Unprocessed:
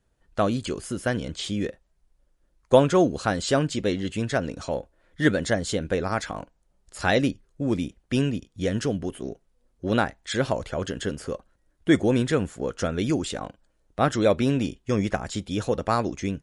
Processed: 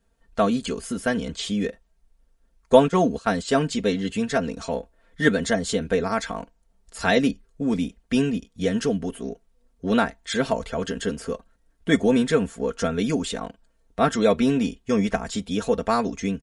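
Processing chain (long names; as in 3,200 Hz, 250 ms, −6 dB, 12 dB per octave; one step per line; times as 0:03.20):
0:02.88–0:03.56: noise gate −28 dBFS, range −13 dB
comb filter 4.4 ms, depth 76%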